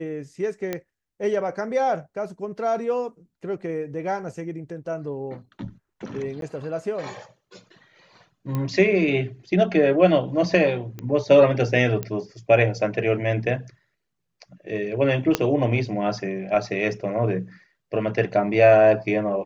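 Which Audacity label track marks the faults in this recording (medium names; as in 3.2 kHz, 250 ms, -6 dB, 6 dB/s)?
0.730000	0.730000	pop -13 dBFS
6.410000	6.420000	dropout 12 ms
8.550000	8.550000	pop -15 dBFS
10.990000	10.990000	pop -20 dBFS
12.030000	12.030000	pop -14 dBFS
15.350000	15.350000	pop -5 dBFS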